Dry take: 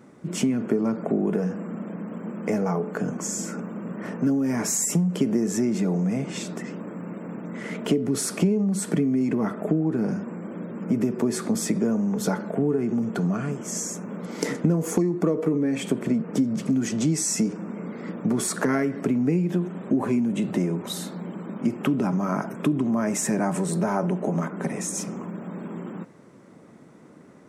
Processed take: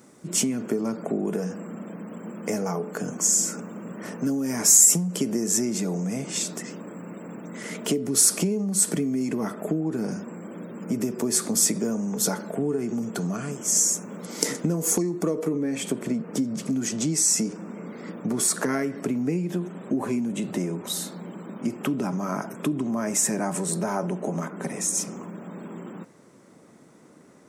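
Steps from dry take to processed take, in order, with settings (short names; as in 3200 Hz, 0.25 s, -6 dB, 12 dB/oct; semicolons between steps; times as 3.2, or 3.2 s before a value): tone controls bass -3 dB, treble +14 dB, from 15.47 s treble +8 dB; gain -2 dB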